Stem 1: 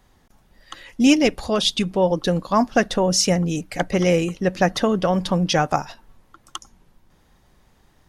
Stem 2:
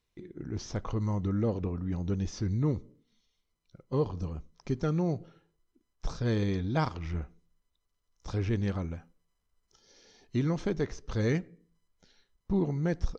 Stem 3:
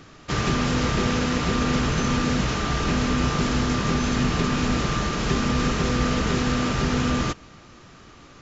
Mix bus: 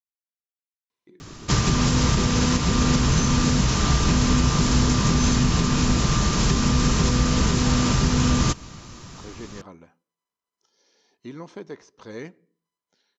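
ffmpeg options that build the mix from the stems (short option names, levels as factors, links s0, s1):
-filter_complex "[1:a]highpass=250,adelay=900,volume=0.562[s0];[2:a]bass=f=250:g=8,treble=f=4000:g=12,adelay=1200,volume=1.12[s1];[s0][s1]amix=inputs=2:normalize=0,equalizer=f=990:t=o:w=0.22:g=7.5,alimiter=limit=0.335:level=0:latency=1:release=333"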